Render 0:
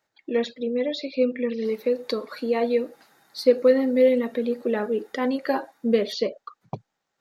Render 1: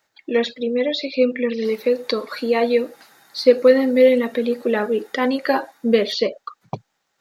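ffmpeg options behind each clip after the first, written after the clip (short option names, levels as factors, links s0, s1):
-filter_complex "[0:a]acrossover=split=5300[s0][s1];[s1]acompressor=threshold=0.00282:ratio=4:attack=1:release=60[s2];[s0][s2]amix=inputs=2:normalize=0,tiltshelf=f=970:g=-3,volume=2.11"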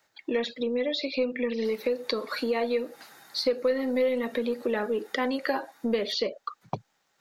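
-filter_complex "[0:a]acrossover=split=390|970[s0][s1][s2];[s0]asoftclip=type=tanh:threshold=0.0944[s3];[s3][s1][s2]amix=inputs=3:normalize=0,acompressor=threshold=0.0398:ratio=2.5"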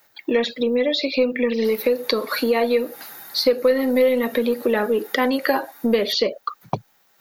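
-af "aexciter=amount=6.6:drive=2.4:freq=11000,volume=2.51"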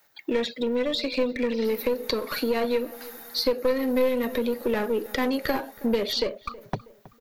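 -filter_complex "[0:a]acrossover=split=460|3600[s0][s1][s2];[s1]aeval=exprs='clip(val(0),-1,0.0299)':c=same[s3];[s0][s3][s2]amix=inputs=3:normalize=0,asplit=2[s4][s5];[s5]adelay=321,lowpass=f=2000:p=1,volume=0.112,asplit=2[s6][s7];[s7]adelay=321,lowpass=f=2000:p=1,volume=0.47,asplit=2[s8][s9];[s9]adelay=321,lowpass=f=2000:p=1,volume=0.47,asplit=2[s10][s11];[s11]adelay=321,lowpass=f=2000:p=1,volume=0.47[s12];[s4][s6][s8][s10][s12]amix=inputs=5:normalize=0,volume=0.596"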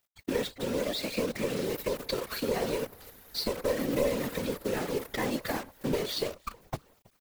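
-af "acrusher=bits=6:dc=4:mix=0:aa=0.000001,afftfilt=real='hypot(re,im)*cos(2*PI*random(0))':imag='hypot(re,im)*sin(2*PI*random(1))':win_size=512:overlap=0.75"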